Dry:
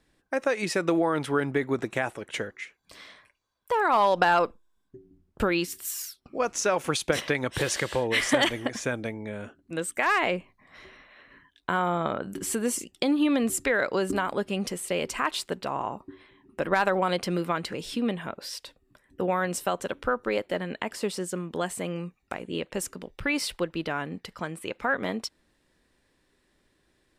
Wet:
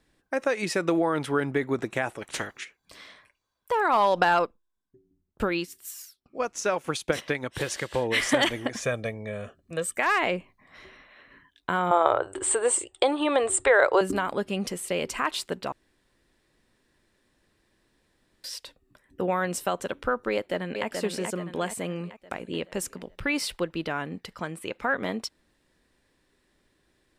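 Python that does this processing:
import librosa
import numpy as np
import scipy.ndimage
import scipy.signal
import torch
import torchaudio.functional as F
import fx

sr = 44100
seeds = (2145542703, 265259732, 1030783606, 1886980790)

y = fx.spec_clip(x, sr, under_db=21, at=(2.21, 2.63), fade=0.02)
y = fx.upward_expand(y, sr, threshold_db=-42.0, expansion=1.5, at=(4.29, 7.94))
y = fx.comb(y, sr, ms=1.7, depth=0.65, at=(8.82, 9.97))
y = fx.curve_eq(y, sr, hz=(120.0, 180.0, 360.0, 870.0, 1400.0, 2500.0, 3600.0, 5800.0, 8600.0, 12000.0), db=(0, -30, 4, 11, 6, 1, 4, -11, 12, -28), at=(11.91, 14.01))
y = fx.echo_throw(y, sr, start_s=20.32, length_s=0.55, ms=430, feedback_pct=50, wet_db=-5.0)
y = fx.edit(y, sr, fx.room_tone_fill(start_s=15.72, length_s=2.72), tone=tone)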